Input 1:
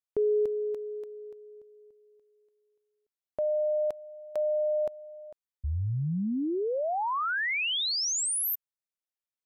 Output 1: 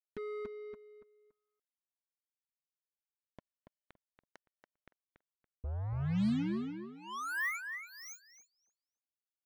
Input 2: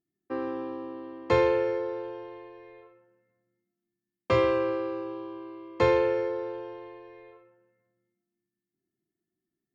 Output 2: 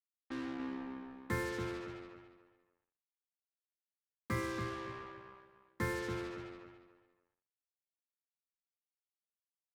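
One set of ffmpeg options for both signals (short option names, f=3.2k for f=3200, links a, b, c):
-filter_complex "[0:a]firequalizer=gain_entry='entry(130,0);entry(210,8);entry(390,-9);entry(580,-18);entry(1100,-6);entry(1900,4);entry(2800,-21);entry(4200,-12);entry(6300,-9);entry(9400,-24)':delay=0.05:min_phase=1,acrusher=bits=5:mix=0:aa=0.5,asplit=2[a][b];[b]adelay=283,lowpass=f=3.2k:p=1,volume=-6dB,asplit=2[c][d];[d]adelay=283,lowpass=f=3.2k:p=1,volume=0.27,asplit=2[e][f];[f]adelay=283,lowpass=f=3.2k:p=1,volume=0.27[g];[c][e][g]amix=inputs=3:normalize=0[h];[a][h]amix=inputs=2:normalize=0,volume=-7dB"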